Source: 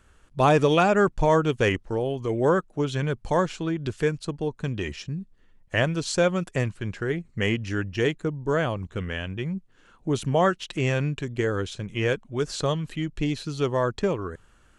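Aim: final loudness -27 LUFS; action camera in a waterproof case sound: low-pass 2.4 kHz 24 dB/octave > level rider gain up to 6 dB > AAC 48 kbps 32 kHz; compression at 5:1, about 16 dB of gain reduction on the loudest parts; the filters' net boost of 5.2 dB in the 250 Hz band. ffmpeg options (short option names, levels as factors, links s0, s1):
-af "equalizer=f=250:t=o:g=7.5,acompressor=threshold=0.0251:ratio=5,lowpass=f=2400:w=0.5412,lowpass=f=2400:w=1.3066,dynaudnorm=m=2,volume=2.82" -ar 32000 -c:a aac -b:a 48k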